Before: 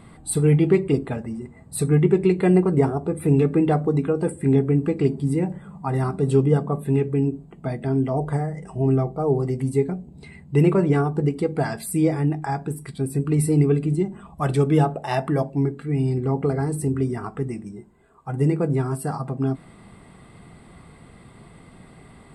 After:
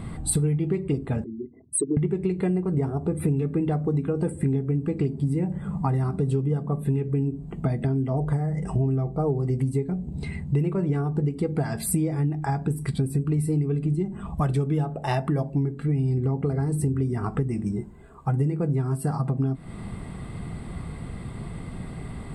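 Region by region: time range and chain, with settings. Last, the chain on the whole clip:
1.24–1.97 s: resonances exaggerated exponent 3 + high-pass 460 Hz + comb 2.9 ms, depth 68%
whole clip: bass shelf 190 Hz +11.5 dB; compression 12:1, threshold -26 dBFS; trim +5 dB

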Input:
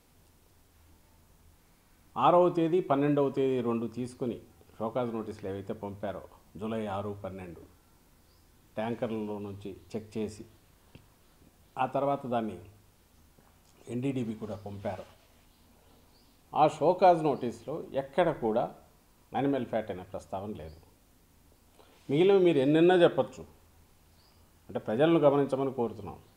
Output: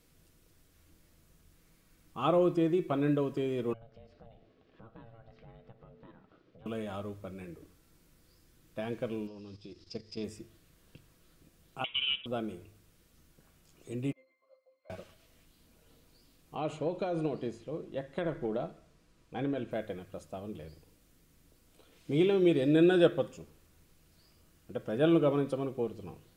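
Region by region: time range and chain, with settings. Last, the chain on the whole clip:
3.73–6.66 s: low-pass 4.1 kHz 24 dB/octave + compression 2.5:1, threshold -49 dBFS + ring modulator 340 Hz
9.27–10.24 s: resonant low-pass 5.1 kHz, resonance Q 11 + level held to a coarse grid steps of 11 dB
11.84–12.26 s: tilt EQ +3 dB/octave + frequency inversion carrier 3.6 kHz
14.12–14.90 s: high-pass 630 Hz 24 dB/octave + pitch-class resonator C, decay 0.2 s
16.55–19.71 s: compression 5:1, threshold -24 dBFS + distance through air 50 m
whole clip: peaking EQ 870 Hz -11 dB 0.55 oct; comb 6.2 ms, depth 31%; trim -2 dB

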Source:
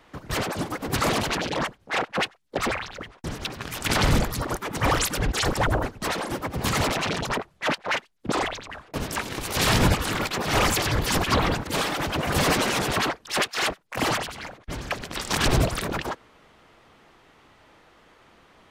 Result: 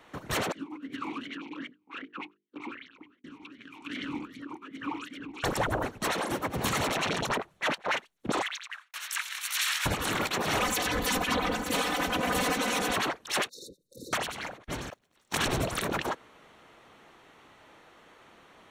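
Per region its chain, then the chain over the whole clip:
0.52–5.44 s: hum notches 50/100/150/200/250/300/350/400/450 Hz + talking filter i-u 2.6 Hz
8.42–9.86 s: expander -44 dBFS + high-pass 1.4 kHz 24 dB/octave
10.61–12.96 s: comb 4 ms, depth 78% + delay 915 ms -17.5 dB
13.49–14.13 s: compression 2.5:1, threshold -44 dBFS + brick-wall FIR band-stop 570–3600 Hz
14.90–15.35 s: jump at every zero crossing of -37 dBFS + gate -23 dBFS, range -37 dB
whole clip: bass shelf 94 Hz -11.5 dB; compression, threshold -25 dBFS; band-stop 4.9 kHz, Q 6.9

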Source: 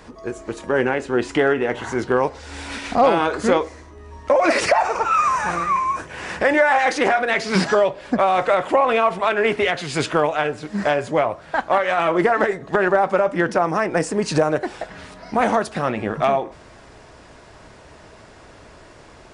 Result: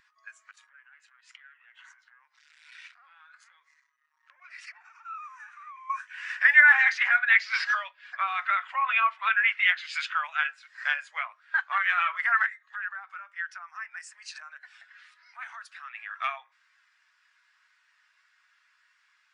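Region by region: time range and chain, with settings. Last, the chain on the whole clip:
0.51–5.90 s: compression 10:1, threshold -31 dBFS + transformer saturation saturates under 1.6 kHz
6.82–10.24 s: distance through air 59 m + tape noise reduction on one side only encoder only
12.46–15.95 s: high-pass 580 Hz + compression 1.5:1, threshold -38 dBFS
whole clip: high-pass 1.4 kHz 24 dB/octave; treble shelf 8.6 kHz -6 dB; spectral contrast expander 1.5:1; trim +5 dB

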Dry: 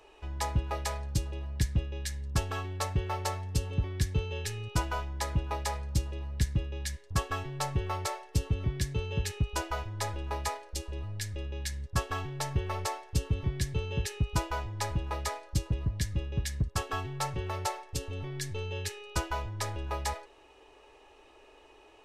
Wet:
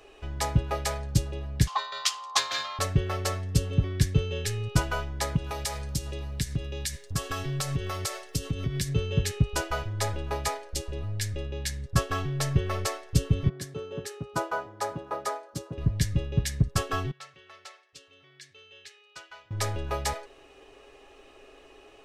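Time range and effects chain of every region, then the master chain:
1.67–2.79 s: FFT filter 340 Hz 0 dB, 580 Hz -5 dB, 1.3 kHz -23 dB, 2.1 kHz +14 dB, 5.7 kHz +13 dB, 8.7 kHz +1 dB + ring modulator 970 Hz
5.36–8.89 s: treble shelf 3.1 kHz +10 dB + compression 3:1, threshold -33 dBFS
13.49–15.78 s: high-pass 280 Hz + resonant high shelf 1.7 kHz -7 dB, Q 1.5 + three bands expanded up and down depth 40%
17.11–19.51 s: low-pass 2.8 kHz + differentiator
whole clip: peaking EQ 180 Hz +4.5 dB 0.76 oct; band-stop 910 Hz, Q 5; comb 7.4 ms, depth 31%; trim +4.5 dB

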